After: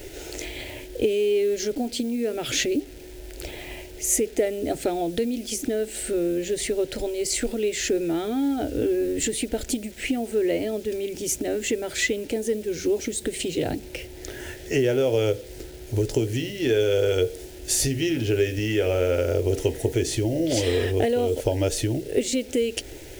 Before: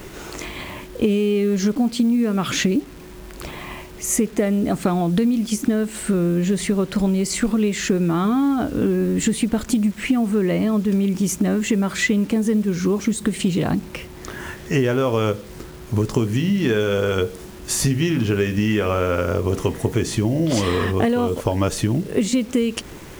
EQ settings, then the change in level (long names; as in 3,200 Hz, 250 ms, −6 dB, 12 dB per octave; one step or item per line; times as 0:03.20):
phaser with its sweep stopped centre 460 Hz, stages 4
0.0 dB